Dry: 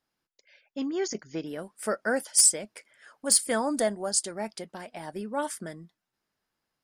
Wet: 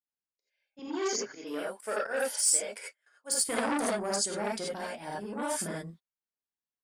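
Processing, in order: gate -48 dBFS, range -27 dB; 0.79–3.49 s: high-pass 400 Hz 12 dB/octave; slow attack 141 ms; compression 2.5:1, threshold -30 dBFS, peak gain reduction 8.5 dB; gated-style reverb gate 110 ms rising, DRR -4.5 dB; transformer saturation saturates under 2.2 kHz

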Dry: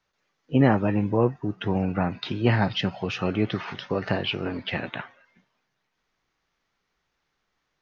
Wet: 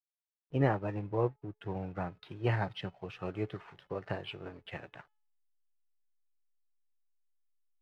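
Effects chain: hysteresis with a dead band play -38.5 dBFS; low-pass 2.7 kHz 6 dB/octave; peaking EQ 230 Hz -14 dB 0.4 oct; feedback comb 430 Hz, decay 0.54 s, mix 40%; upward expansion 1.5:1, over -47 dBFS; trim -1.5 dB

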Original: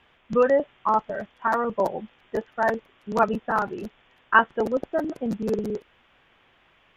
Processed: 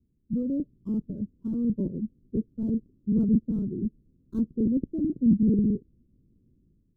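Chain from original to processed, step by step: dead-time distortion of 0.11 ms; inverse Chebyshev low-pass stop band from 710 Hz, stop band 50 dB; level rider gain up to 9 dB

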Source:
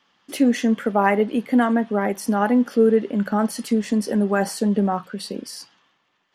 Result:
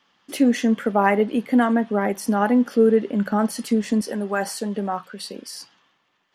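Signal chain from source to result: 4.01–5.55 s: bass shelf 380 Hz -10 dB

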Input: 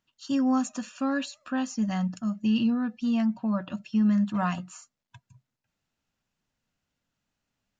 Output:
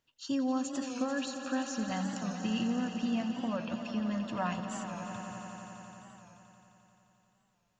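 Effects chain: graphic EQ with 31 bands 200 Hz -9 dB, 500 Hz +5 dB, 1.25 kHz -4 dB; compression 2:1, threshold -33 dBFS, peak gain reduction 6.5 dB; echo with a slow build-up 87 ms, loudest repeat 5, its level -12 dB; warped record 45 rpm, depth 100 cents

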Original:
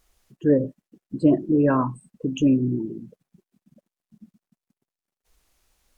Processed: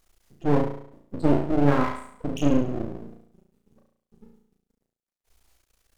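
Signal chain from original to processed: flutter echo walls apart 6 m, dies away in 0.65 s; half-wave rectifier

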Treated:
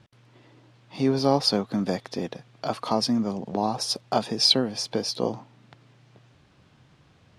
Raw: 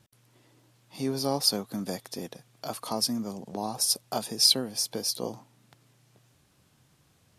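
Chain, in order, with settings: low-pass 3.7 kHz 12 dB/octave; trim +7.5 dB

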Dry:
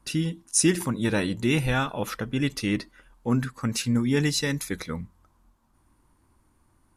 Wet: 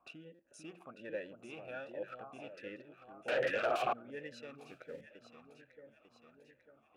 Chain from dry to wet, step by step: local Wiener filter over 9 samples; compression 2:1, threshold -48 dBFS, peak gain reduction 17 dB; echo whose repeats swap between lows and highs 448 ms, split 1.2 kHz, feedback 73%, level -6 dB; 3.28–3.93 s: sine folder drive 19 dB, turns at -25.5 dBFS; 4.58–5.01 s: modulation noise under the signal 15 dB; buffer glitch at 0.34 s, samples 256, times 8; talking filter a-e 1.3 Hz; trim +7.5 dB

